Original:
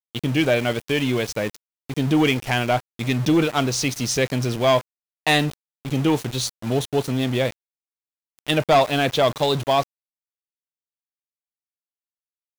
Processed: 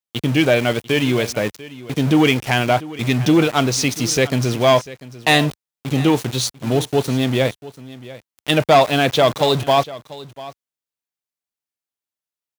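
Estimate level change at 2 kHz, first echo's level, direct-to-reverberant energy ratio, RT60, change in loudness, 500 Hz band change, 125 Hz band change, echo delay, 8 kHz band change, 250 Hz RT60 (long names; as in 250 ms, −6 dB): +4.0 dB, −18.0 dB, no reverb audible, no reverb audible, +4.0 dB, +4.0 dB, +4.0 dB, 694 ms, +4.0 dB, no reverb audible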